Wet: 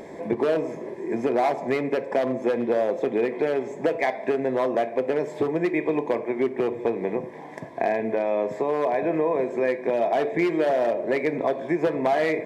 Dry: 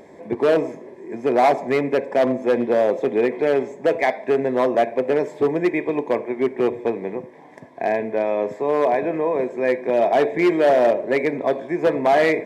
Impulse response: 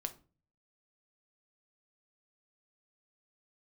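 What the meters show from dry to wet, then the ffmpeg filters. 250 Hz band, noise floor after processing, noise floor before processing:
-3.0 dB, -38 dBFS, -44 dBFS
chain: -filter_complex "[0:a]acompressor=threshold=-27dB:ratio=4,asplit=2[a][b];[1:a]atrim=start_sample=2205[c];[b][c]afir=irnorm=-1:irlink=0,volume=0dB[d];[a][d]amix=inputs=2:normalize=0"

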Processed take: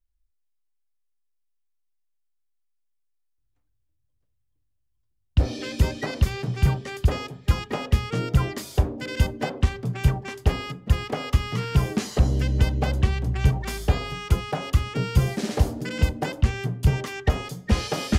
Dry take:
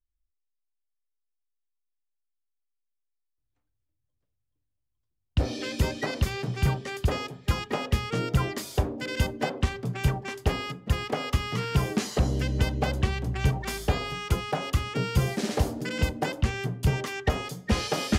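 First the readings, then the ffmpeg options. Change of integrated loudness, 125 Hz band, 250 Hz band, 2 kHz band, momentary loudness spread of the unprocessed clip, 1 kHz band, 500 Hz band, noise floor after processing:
+3.5 dB, +4.5 dB, +2.0 dB, 0.0 dB, 3 LU, 0.0 dB, +0.5 dB, -72 dBFS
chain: -af "lowshelf=f=120:g=8"

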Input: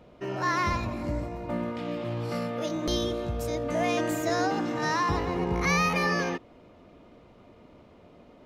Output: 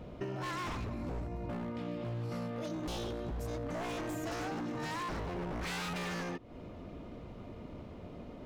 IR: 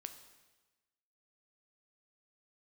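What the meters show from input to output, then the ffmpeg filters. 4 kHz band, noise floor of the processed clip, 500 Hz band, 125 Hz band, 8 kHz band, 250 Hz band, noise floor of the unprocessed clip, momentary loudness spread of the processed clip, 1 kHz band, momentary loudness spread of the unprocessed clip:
-9.5 dB, -48 dBFS, -10.5 dB, -6.5 dB, -10.5 dB, -8.5 dB, -54 dBFS, 11 LU, -12.0 dB, 8 LU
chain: -af "lowshelf=f=240:g=9.5,aeval=exprs='0.0794*(abs(mod(val(0)/0.0794+3,4)-2)-1)':c=same,acompressor=threshold=-38dB:ratio=10,volume=2dB"

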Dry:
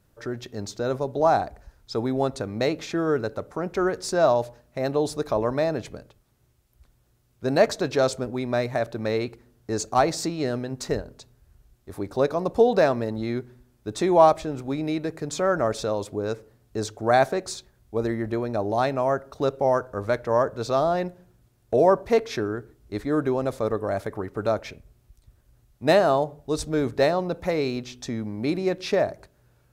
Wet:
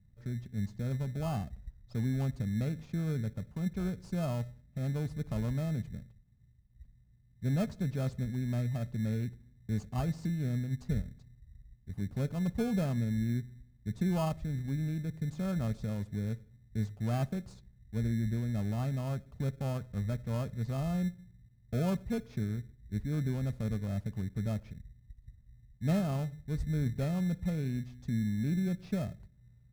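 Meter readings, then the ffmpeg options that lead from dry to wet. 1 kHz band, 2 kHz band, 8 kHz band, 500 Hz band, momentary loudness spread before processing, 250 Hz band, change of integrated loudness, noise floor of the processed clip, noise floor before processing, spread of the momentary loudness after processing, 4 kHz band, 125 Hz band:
-21.0 dB, -16.0 dB, -15.5 dB, -20.0 dB, 12 LU, -5.5 dB, -10.0 dB, -62 dBFS, -63 dBFS, 8 LU, -15.5 dB, +2.5 dB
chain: -filter_complex "[0:a]firequalizer=gain_entry='entry(200,0);entry(320,-21);entry(7100,-26)':delay=0.05:min_phase=1,asplit=2[a][b];[b]acrusher=samples=23:mix=1:aa=0.000001,volume=-3.5dB[c];[a][c]amix=inputs=2:normalize=0,volume=-2dB"

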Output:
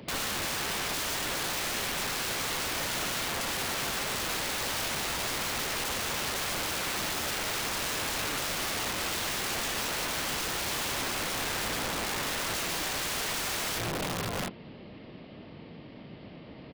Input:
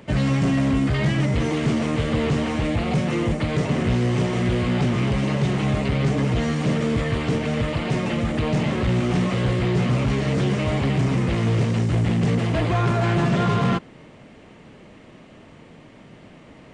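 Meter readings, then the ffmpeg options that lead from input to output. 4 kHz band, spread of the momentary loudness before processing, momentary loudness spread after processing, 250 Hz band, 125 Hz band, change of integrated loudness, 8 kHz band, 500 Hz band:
+3.0 dB, 3 LU, 17 LU, -19.5 dB, -23.0 dB, -8.5 dB, +10.0 dB, -12.0 dB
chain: -filter_complex "[0:a]equalizer=f=1.5k:t=o:w=1.6:g=-6,acrossover=split=110[a][b];[a]alimiter=level_in=3dB:limit=-24dB:level=0:latency=1:release=237,volume=-3dB[c];[b]highshelf=f=3.9k:g=4[d];[c][d]amix=inputs=2:normalize=0,highpass=f=47:p=1,aecho=1:1:710:0.282,aresample=11025,aresample=44100,aeval=exprs='(mod(23.7*val(0)+1,2)-1)/23.7':c=same"

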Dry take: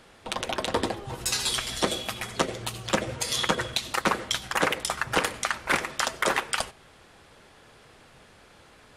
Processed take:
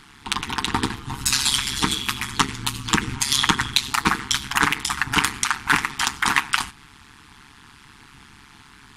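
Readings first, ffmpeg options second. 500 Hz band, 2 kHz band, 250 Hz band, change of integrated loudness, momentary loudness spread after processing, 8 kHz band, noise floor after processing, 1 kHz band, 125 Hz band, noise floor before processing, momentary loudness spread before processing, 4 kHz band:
-7.5 dB, +6.5 dB, +5.5 dB, +6.0 dB, 6 LU, +7.0 dB, -49 dBFS, +5.0 dB, +7.0 dB, -55 dBFS, 6 LU, +7.0 dB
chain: -af "afftfilt=real='re*(1-between(b*sr/4096,330,830))':imag='im*(1-between(b*sr/4096,330,830))':win_size=4096:overlap=0.75,acontrast=65,tremolo=f=140:d=0.919,volume=4.5dB"

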